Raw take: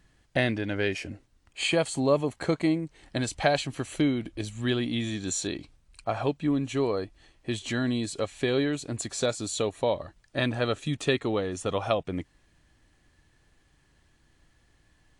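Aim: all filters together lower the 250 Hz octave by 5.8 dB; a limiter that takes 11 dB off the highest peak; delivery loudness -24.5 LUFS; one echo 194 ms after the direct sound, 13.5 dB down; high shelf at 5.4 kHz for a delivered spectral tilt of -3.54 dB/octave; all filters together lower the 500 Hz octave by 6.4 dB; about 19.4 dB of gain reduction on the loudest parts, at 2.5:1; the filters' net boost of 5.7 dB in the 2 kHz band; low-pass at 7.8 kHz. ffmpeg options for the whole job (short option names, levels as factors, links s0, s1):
-af "lowpass=7800,equalizer=f=250:t=o:g=-5,equalizer=f=500:t=o:g=-7,equalizer=f=2000:t=o:g=7,highshelf=f=5400:g=4,acompressor=threshold=0.00316:ratio=2.5,alimiter=level_in=3.98:limit=0.0631:level=0:latency=1,volume=0.251,aecho=1:1:194:0.211,volume=13.3"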